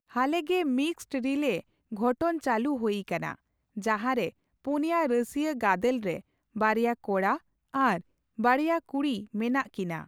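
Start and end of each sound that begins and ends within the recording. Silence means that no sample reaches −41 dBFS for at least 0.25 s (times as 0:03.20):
0:01.92–0:03.35
0:03.77–0:04.30
0:04.65–0:06.20
0:06.56–0:07.38
0:07.74–0:08.00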